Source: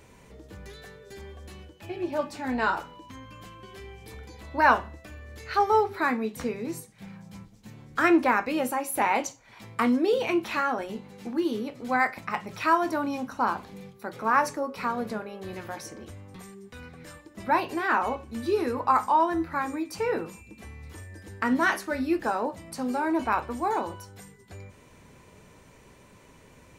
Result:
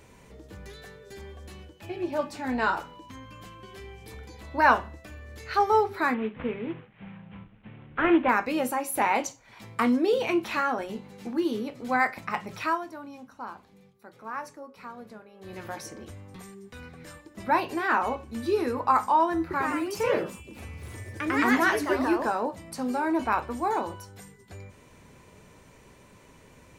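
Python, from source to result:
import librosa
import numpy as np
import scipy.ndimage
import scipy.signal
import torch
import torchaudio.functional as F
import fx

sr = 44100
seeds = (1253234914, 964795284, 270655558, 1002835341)

y = fx.cvsd(x, sr, bps=16000, at=(6.14, 8.29))
y = fx.echo_pitch(y, sr, ms=97, semitones=2, count=2, db_per_echo=-3.0, at=(19.41, 22.57))
y = fx.edit(y, sr, fx.fade_down_up(start_s=12.54, length_s=3.12, db=-13.0, fade_s=0.32), tone=tone)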